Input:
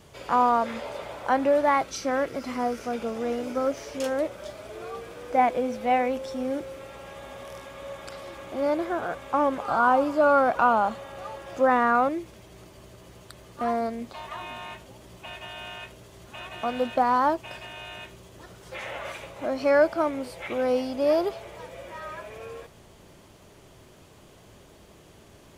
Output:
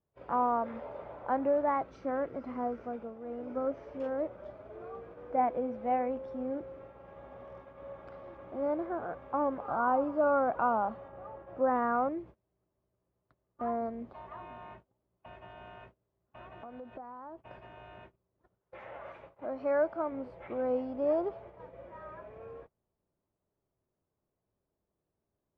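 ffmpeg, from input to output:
-filter_complex "[0:a]asettb=1/sr,asplit=3[s0][s1][s2];[s0]atrim=end=11.084[s3];[s1]atrim=start=11.08:end=11.75,asetpts=PTS-STARTPTS,afade=t=in:d=0.004:c=qsin,afade=t=out:st=0.666:d=0.004:c=qsin,equalizer=f=8600:w=0.5:g=-13.5[s4];[s2]atrim=start=11.746[s5];[s3][s4]acrossfade=d=0.004:c1=hsin:c2=qsin[s6];[s6][s5]acrossfade=d=0.004:c1=qsin:c2=hsin,asettb=1/sr,asplit=3[s7][s8][s9];[s7]atrim=end=16.524[s10];[s8]atrim=start=16.52:end=17.47,asetpts=PTS-STARTPTS,afade=t=in:d=0.004:c=qsin,afade=t=out:st=0.946:d=0.004:c=qsin,acompressor=threshold=0.0178:ratio=8:attack=3.2:release=140:knee=1:detection=peak[s11];[s9]atrim=start=17.466[s12];[s10][s11]acrossfade=d=0.004:c1=hsin:c2=qsin[s13];[s13][s12]acrossfade=d=0.004:c1=qsin:c2=hsin,asettb=1/sr,asplit=3[s14][s15][s16];[s14]atrim=end=18.594[s17];[s15]atrim=start=18.59:end=20.12,asetpts=PTS-STARTPTS,afade=t=in:d=0.004:c=qsin,afade=t=out:st=1.526:d=0.004:c=qsin,lowshelf=f=370:g=-6[s18];[s16]atrim=start=20.116[s19];[s17][s18]acrossfade=d=0.004:c1=hsin:c2=qsin[s20];[s20][s19]acrossfade=d=0.004:c1=qsin:c2=hsin,asplit=3[s21][s22][s23];[s21]atrim=end=3.18,asetpts=PTS-STARTPTS,afade=t=out:st=2.82:d=0.36:silence=0.354813[s24];[s22]atrim=start=3.18:end=3.2,asetpts=PTS-STARTPTS,volume=0.355[s25];[s23]atrim=start=3.2,asetpts=PTS-STARTPTS,afade=t=in:d=0.36:silence=0.354813[s26];[s24][s25][s26]concat=n=3:v=0:a=1,agate=range=0.0501:threshold=0.00794:ratio=16:detection=peak,lowpass=1200,volume=0.473"

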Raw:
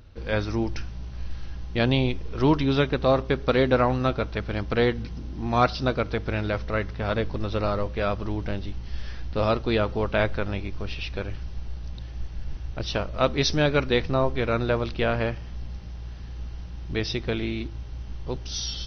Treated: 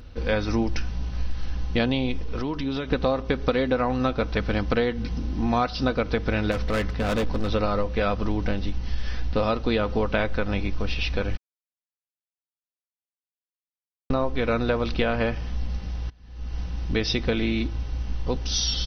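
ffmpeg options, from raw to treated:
-filter_complex "[0:a]asettb=1/sr,asplit=3[s0][s1][s2];[s0]atrim=end=2.204[s3];[s1]atrim=start=2.2:end=2.91,asetpts=PTS-STARTPTS,afade=t=in:d=0.004:c=qsin,afade=t=out:st=0.706:d=0.004:c=qsin,acompressor=threshold=0.0316:ratio=12:attack=3.2:release=140:knee=1:detection=peak[s4];[s2]atrim=start=2.906[s5];[s3][s4]acrossfade=d=0.004:c1=hsin:c2=qsin[s6];[s6][s5]acrossfade=d=0.004:c1=qsin:c2=hsin,asettb=1/sr,asplit=3[s7][s8][s9];[s7]atrim=end=6.514[s10];[s8]atrim=start=6.51:end=7.49,asetpts=PTS-STARTPTS,afade=t=in:d=0.004:c=qsin,afade=t=out:st=0.976:d=0.004:c=qsin,asoftclip=type=hard:threshold=0.0473[s11];[s9]atrim=start=7.486[s12];[s10][s11]acrossfade=d=0.004:c1=hsin:c2=qsin[s13];[s13][s12]acrossfade=d=0.004:c1=qsin:c2=hsin,asplit=4[s14][s15][s16][s17];[s14]atrim=end=11.37,asetpts=PTS-STARTPTS,afade=t=out:st=11.366:d=0.004:c=hsin[s18];[s15]atrim=start=11.37:end=14.1,asetpts=PTS-STARTPTS,volume=0[s19];[s16]atrim=start=14.1:end=16.1,asetpts=PTS-STARTPTS,afade=t=in:d=0.004:c=hsin,afade=t=out:st=1.996:d=0.004:c=hsin:silence=0.0749894[s20];[s17]atrim=start=16.1,asetpts=PTS-STARTPTS,afade=t=in:d=0.48:c=qua:silence=0.0749894[s21];[s18][s19][s20][s21]concat=n=4:v=0:a=1,aecho=1:1:4:0.38,acompressor=threshold=0.0562:ratio=10,volume=2"

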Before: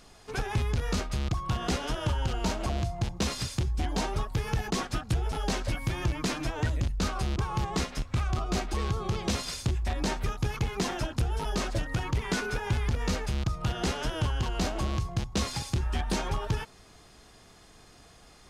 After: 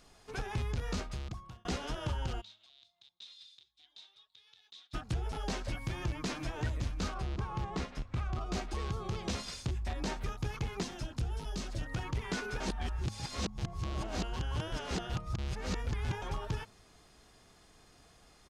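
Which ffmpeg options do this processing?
-filter_complex "[0:a]asplit=3[s0][s1][s2];[s0]afade=t=out:st=2.4:d=0.02[s3];[s1]bandpass=f=3700:t=q:w=11,afade=t=in:st=2.4:d=0.02,afade=t=out:st=4.93:d=0.02[s4];[s2]afade=t=in:st=4.93:d=0.02[s5];[s3][s4][s5]amix=inputs=3:normalize=0,asplit=2[s6][s7];[s7]afade=t=in:st=5.76:d=0.01,afade=t=out:st=6.45:d=0.01,aecho=0:1:560|1120|1680:0.266073|0.0665181|0.0166295[s8];[s6][s8]amix=inputs=2:normalize=0,asettb=1/sr,asplit=3[s9][s10][s11];[s9]atrim=end=7.144[s12];[s10]atrim=start=7.14:end=8.41,asetpts=PTS-STARTPTS,afade=t=in:d=0.004:c=qsin,afade=t=out:st=1.266:d=0.004:c=qsin,lowpass=f=2900:p=1[s13];[s11]atrim=start=8.406[s14];[s12][s13]acrossfade=d=0.004:c1=hsin:c2=qsin[s15];[s15][s14]acrossfade=d=0.004:c1=qsin:c2=hsin,asettb=1/sr,asplit=3[s16][s17][s18];[s16]atrim=end=10.834[s19];[s17]atrim=start=10.83:end=11.82,asetpts=PTS-STARTPTS,afade=t=in:d=0.004:c=qsin,afade=t=out:st=0.986:d=0.004:c=qsin,acrossover=split=300|3000[s20][s21][s22];[s21]acompressor=threshold=0.01:ratio=6:attack=3.2:release=140:knee=2.83:detection=peak[s23];[s20][s23][s22]amix=inputs=3:normalize=0[s24];[s18]atrim=start=11.816[s25];[s19][s24]acrossfade=d=0.004:c1=hsin:c2=qsin[s26];[s26][s25]acrossfade=d=0.004:c1=qsin:c2=hsin,asplit=4[s27][s28][s29][s30];[s27]atrim=end=1.65,asetpts=PTS-STARTPTS,afade=t=out:st=1.01:d=0.64[s31];[s28]atrim=start=1.65:end=12.602,asetpts=PTS-STARTPTS,afade=t=in:d=0.004:c=hsin[s32];[s29]atrim=start=12.598:end=16.222,asetpts=PTS-STARTPTS,areverse[s33];[s30]atrim=start=16.218[s34];[s31][s32]concat=n=2:v=0:a=1[s35];[s35][s33]acrossfade=d=0.004:c1=hsin:c2=hsin[s36];[s36][s34]acrossfade=d=0.004:c1=hsin:c2=hsin,acrossover=split=8800[s37][s38];[s38]acompressor=threshold=0.00112:ratio=4:attack=1:release=60[s39];[s37][s39]amix=inputs=2:normalize=0,bandreject=f=104.9:t=h:w=4,bandreject=f=209.8:t=h:w=4,volume=0.473"

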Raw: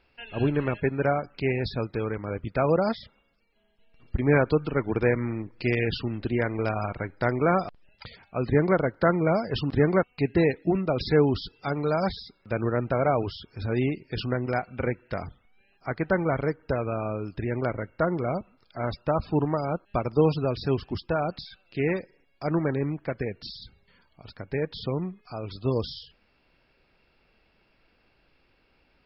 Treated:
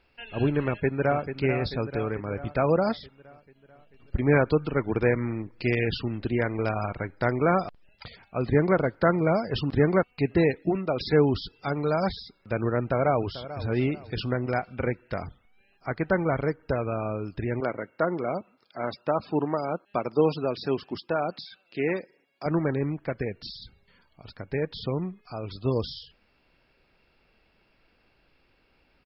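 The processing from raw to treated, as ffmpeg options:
-filter_complex "[0:a]asplit=2[s0][s1];[s1]afade=t=in:st=0.65:d=0.01,afade=t=out:st=1.29:d=0.01,aecho=0:1:440|880|1320|1760|2200|2640|3080:0.354813|0.212888|0.127733|0.0766397|0.0459838|0.0275903|0.0165542[s2];[s0][s2]amix=inputs=2:normalize=0,asplit=2[s3][s4];[s4]afade=t=in:st=7.67:d=0.01,afade=t=out:st=8.43:d=0.01,aecho=0:1:390|780|1170|1560|1950|2340:0.141254|0.0847523|0.0508514|0.0305108|0.0183065|0.0109839[s5];[s3][s5]amix=inputs=2:normalize=0,asettb=1/sr,asplit=3[s6][s7][s8];[s6]atrim=end=10.694[s9];[s7]atrim=start=10.69:end=11.13,asetpts=PTS-STARTPTS,afade=t=in:d=0.004:c=qsin,afade=t=out:st=0.436:d=0.004:c=qsin,lowshelf=f=170:g=-8.5[s10];[s8]atrim=start=11.126[s11];[s9][s10]acrossfade=d=0.004:c1=hsin:c2=qsin[s12];[s12][s11]acrossfade=d=0.004:c1=qsin:c2=hsin,asplit=2[s13][s14];[s14]afade=t=in:st=12.88:d=0.01,afade=t=out:st=13.66:d=0.01,aecho=0:1:440|880|1320:0.188365|0.0659277|0.0230747[s15];[s13][s15]amix=inputs=2:normalize=0,asettb=1/sr,asplit=3[s16][s17][s18];[s16]atrim=end=17.604[s19];[s17]atrim=start=17.6:end=22.46,asetpts=PTS-STARTPTS,afade=t=in:d=0.004:c=qsin,afade=t=out:st=4.856:d=0.004:c=qsin,highpass=210[s20];[s18]atrim=start=22.456[s21];[s19][s20]acrossfade=d=0.004:c1=hsin:c2=qsin[s22];[s22][s21]acrossfade=d=0.004:c1=qsin:c2=hsin"

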